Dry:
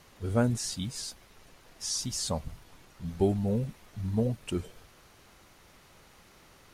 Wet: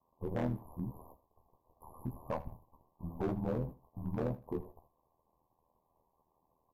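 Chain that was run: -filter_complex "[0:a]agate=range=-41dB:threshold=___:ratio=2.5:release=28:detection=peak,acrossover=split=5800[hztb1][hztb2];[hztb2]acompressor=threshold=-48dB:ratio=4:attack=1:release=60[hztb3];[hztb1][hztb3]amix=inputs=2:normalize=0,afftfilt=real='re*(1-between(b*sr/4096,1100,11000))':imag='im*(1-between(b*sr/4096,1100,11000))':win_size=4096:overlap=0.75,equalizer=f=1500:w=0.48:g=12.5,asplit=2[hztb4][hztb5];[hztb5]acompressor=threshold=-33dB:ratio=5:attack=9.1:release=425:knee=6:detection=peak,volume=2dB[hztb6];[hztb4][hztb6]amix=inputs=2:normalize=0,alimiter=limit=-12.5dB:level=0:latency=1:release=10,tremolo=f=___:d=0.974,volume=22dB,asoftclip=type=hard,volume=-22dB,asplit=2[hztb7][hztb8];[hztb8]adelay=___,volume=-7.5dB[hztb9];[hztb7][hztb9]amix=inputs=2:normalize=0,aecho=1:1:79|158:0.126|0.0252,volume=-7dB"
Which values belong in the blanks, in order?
-46dB, 81, 16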